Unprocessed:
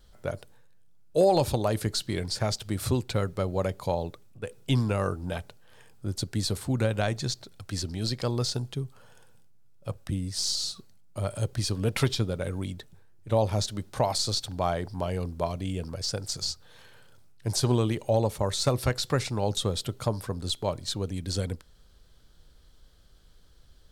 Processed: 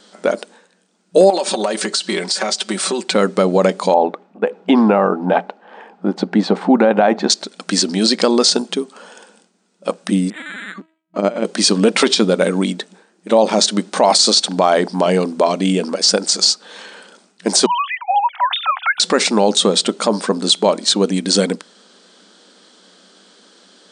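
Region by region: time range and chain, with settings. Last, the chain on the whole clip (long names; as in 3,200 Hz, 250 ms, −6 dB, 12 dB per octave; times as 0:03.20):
0:01.30–0:03.14: high-pass filter 530 Hz 6 dB per octave + downward compressor 16 to 1, threshold −33 dBFS + comb filter 5.3 ms, depth 62%
0:03.94–0:07.30: low-pass filter 1,900 Hz + parametric band 800 Hz +9.5 dB 0.48 octaves
0:10.30–0:11.45: linear-prediction vocoder at 8 kHz pitch kept + linearly interpolated sample-rate reduction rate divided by 8×
0:17.66–0:19.00: three sine waves on the formant tracks + Butterworth high-pass 730 Hz 96 dB per octave
whole clip: brick-wall band-pass 180–9,400 Hz; boost into a limiter +19.5 dB; level −1 dB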